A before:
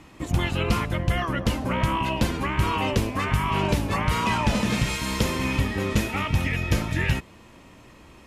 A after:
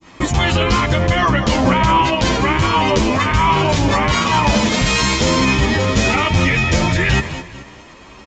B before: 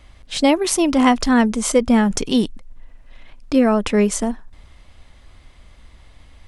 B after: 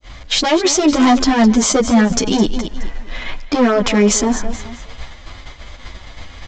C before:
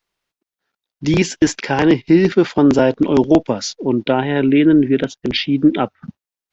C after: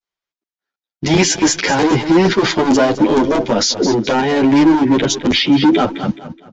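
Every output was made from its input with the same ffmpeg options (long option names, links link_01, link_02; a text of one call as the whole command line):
ffmpeg -i in.wav -filter_complex "[0:a]asoftclip=type=hard:threshold=-13.5dB,adynamicequalizer=threshold=0.0126:dfrequency=1800:dqfactor=0.72:tfrequency=1800:tqfactor=0.72:attack=5:release=100:ratio=0.375:range=2:mode=cutabove:tftype=bell,areverse,acompressor=threshold=-25dB:ratio=10,areverse,lowshelf=frequency=380:gain=-7,aresample=16000,aresample=44100,agate=range=-33dB:threshold=-43dB:ratio=3:detection=peak,bandreject=frequency=2700:width=19,aecho=1:1:211|422|633:0.141|0.048|0.0163,alimiter=level_in=29.5dB:limit=-1dB:release=50:level=0:latency=1,asplit=2[link_01][link_02];[link_02]adelay=9.4,afreqshift=1.9[link_03];[link_01][link_03]amix=inputs=2:normalize=1,volume=-2.5dB" out.wav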